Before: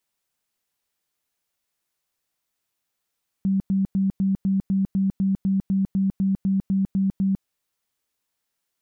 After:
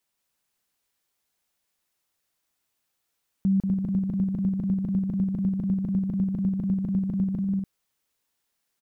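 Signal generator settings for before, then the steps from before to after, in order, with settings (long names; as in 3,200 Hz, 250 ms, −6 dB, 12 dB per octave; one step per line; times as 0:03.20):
tone bursts 193 Hz, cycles 29, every 0.25 s, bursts 16, −18 dBFS
loudspeakers that aren't time-aligned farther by 64 metres −5 dB, 83 metres −11 dB, 99 metres −9 dB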